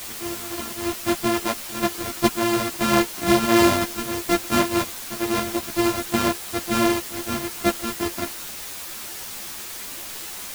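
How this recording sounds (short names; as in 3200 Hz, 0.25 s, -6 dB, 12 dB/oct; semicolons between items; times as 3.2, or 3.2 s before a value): a buzz of ramps at a fixed pitch in blocks of 128 samples; tremolo saw up 1.3 Hz, depth 40%; a quantiser's noise floor 6-bit, dither triangular; a shimmering, thickened sound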